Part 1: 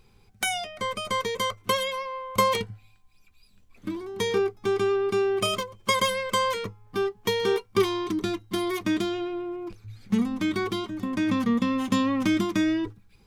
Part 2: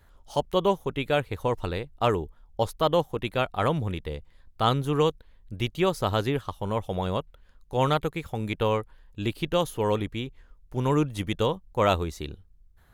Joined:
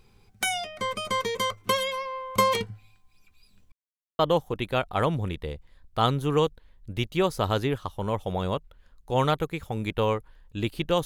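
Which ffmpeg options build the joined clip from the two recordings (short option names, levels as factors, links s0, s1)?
-filter_complex "[0:a]apad=whole_dur=11.05,atrim=end=11.05,asplit=2[s0][s1];[s0]atrim=end=3.72,asetpts=PTS-STARTPTS,afade=t=out:st=3.716:d=0.004:c=hsin[s2];[s1]atrim=start=3.72:end=4.19,asetpts=PTS-STARTPTS,volume=0[s3];[1:a]atrim=start=2.82:end=9.68,asetpts=PTS-STARTPTS,afade=t=in:d=0.004:c=hsin[s4];[s2][s3][s4]concat=n=3:v=0:a=1"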